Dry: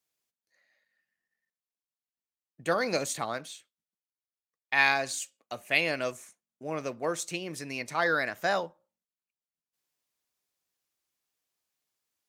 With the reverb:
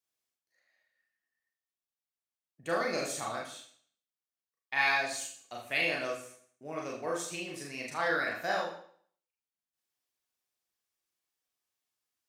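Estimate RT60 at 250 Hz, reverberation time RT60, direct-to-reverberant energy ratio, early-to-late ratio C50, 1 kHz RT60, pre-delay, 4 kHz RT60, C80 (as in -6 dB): 0.55 s, 0.55 s, -3.0 dB, 6.0 dB, 0.55 s, 32 ms, 0.55 s, 8.5 dB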